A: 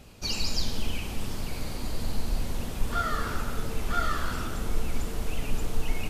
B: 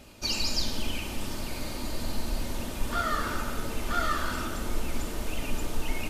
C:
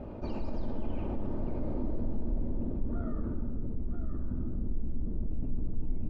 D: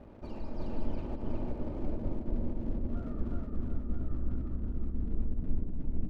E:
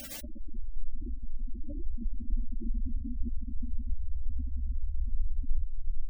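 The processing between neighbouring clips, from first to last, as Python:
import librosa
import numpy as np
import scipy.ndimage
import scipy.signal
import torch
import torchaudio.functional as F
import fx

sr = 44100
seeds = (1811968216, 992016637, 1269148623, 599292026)

y1 = fx.low_shelf(x, sr, hz=100.0, db=-7.5)
y1 = y1 + 0.35 * np.pad(y1, (int(3.3 * sr / 1000.0), 0))[:len(y1)]
y1 = F.gain(torch.from_numpy(y1), 1.5).numpy()
y2 = fx.rider(y1, sr, range_db=10, speed_s=2.0)
y2 = fx.filter_sweep_lowpass(y2, sr, from_hz=680.0, to_hz=210.0, start_s=0.93, end_s=3.94, q=0.9)
y2 = fx.env_flatten(y2, sr, amount_pct=50)
y2 = F.gain(torch.from_numpy(y2), -5.5).numpy()
y3 = np.sign(y2) * np.maximum(np.abs(y2) - 10.0 ** (-51.5 / 20.0), 0.0)
y3 = fx.echo_feedback(y3, sr, ms=365, feedback_pct=49, wet_db=-3.5)
y3 = fx.upward_expand(y3, sr, threshold_db=-37.0, expansion=1.5)
y4 = fx.dmg_noise_colour(y3, sr, seeds[0], colour='white', level_db=-42.0)
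y4 = fx.graphic_eq_31(y4, sr, hz=(100, 160, 400, 1000), db=(-12, -10, -8, -7))
y4 = fx.spec_gate(y4, sr, threshold_db=-10, keep='strong')
y4 = F.gain(torch.from_numpy(y4), 4.5).numpy()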